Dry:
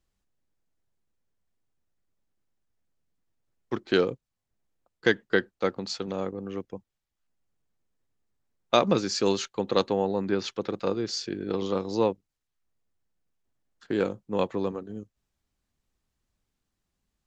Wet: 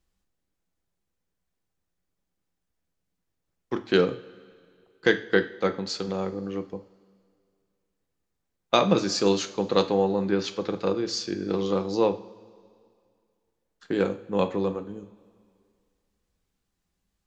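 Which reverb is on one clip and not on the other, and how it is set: two-slope reverb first 0.41 s, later 2.2 s, from -18 dB, DRR 7.5 dB; gain +1 dB

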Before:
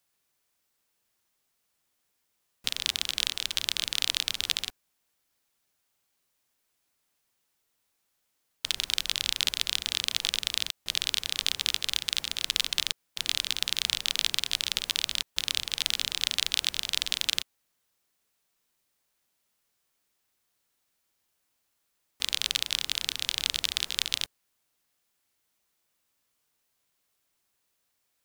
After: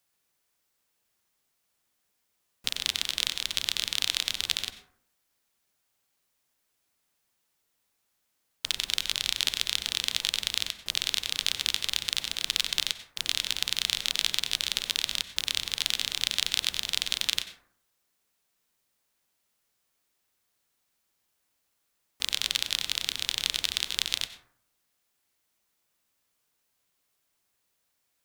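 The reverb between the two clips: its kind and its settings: plate-style reverb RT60 0.63 s, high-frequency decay 0.35×, pre-delay 80 ms, DRR 10.5 dB

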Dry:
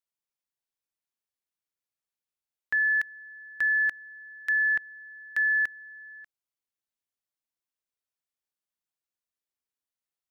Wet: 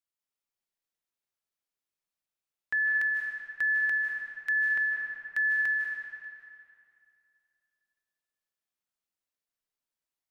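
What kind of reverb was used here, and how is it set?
digital reverb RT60 2.5 s, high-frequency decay 0.8×, pre-delay 0.115 s, DRR -1 dB; gain -3 dB

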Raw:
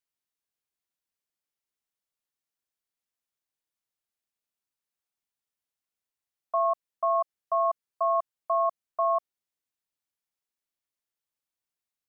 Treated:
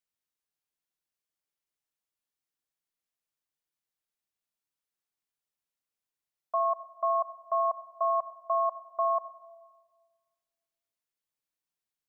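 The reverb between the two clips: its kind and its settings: shoebox room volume 1600 m³, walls mixed, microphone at 0.48 m; gain -2 dB

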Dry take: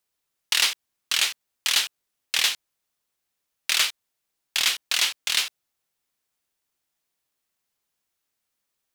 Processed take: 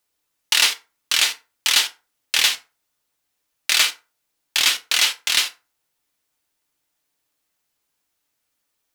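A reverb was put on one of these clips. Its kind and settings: FDN reverb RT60 0.31 s, low-frequency decay 0.85×, high-frequency decay 0.65×, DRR 5.5 dB; gain +4 dB

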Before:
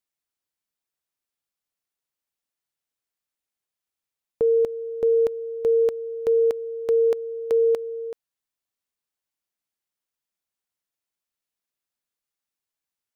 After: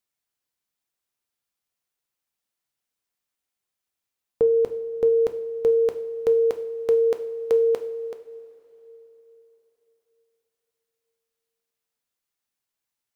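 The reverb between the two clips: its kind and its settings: two-slope reverb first 0.52 s, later 3.9 s, from -17 dB, DRR 7.5 dB; gain +2 dB

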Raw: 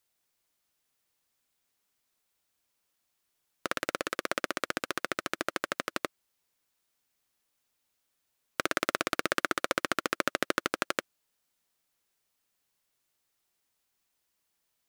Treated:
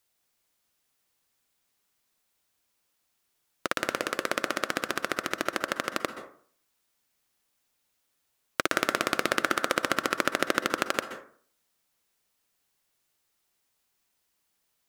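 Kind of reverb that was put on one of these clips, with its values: plate-style reverb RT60 0.52 s, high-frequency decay 0.45×, pre-delay 0.115 s, DRR 10 dB; gain +3 dB

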